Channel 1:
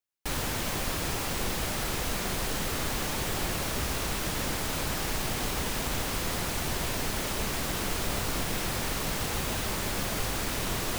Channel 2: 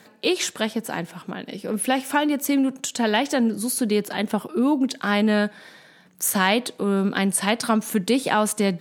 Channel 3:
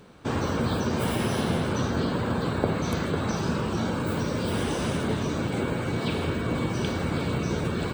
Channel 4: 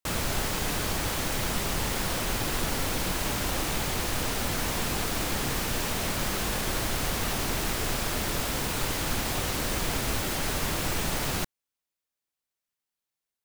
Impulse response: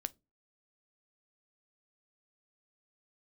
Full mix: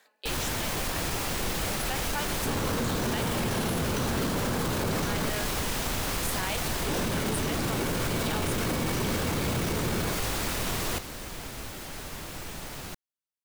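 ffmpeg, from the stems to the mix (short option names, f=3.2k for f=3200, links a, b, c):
-filter_complex "[0:a]volume=1dB[a];[1:a]highpass=610,tremolo=f=4.1:d=0.4,volume=-9dB[b];[2:a]adelay=2200,volume=1dB,asplit=3[c][d][e];[c]atrim=end=5.3,asetpts=PTS-STARTPTS,afade=t=out:st=5.296:d=0.004:c=hsin[f];[d]atrim=start=5.3:end=6.86,asetpts=PTS-STARTPTS,volume=0[g];[e]atrim=start=6.86,asetpts=PTS-STARTPTS,afade=t=in:d=0.004:c=hsin[h];[f][g][h]concat=n=3:v=0:a=1[i];[3:a]adelay=1500,volume=-10dB[j];[a][b][i][j]amix=inputs=4:normalize=0,alimiter=limit=-20dB:level=0:latency=1:release=13"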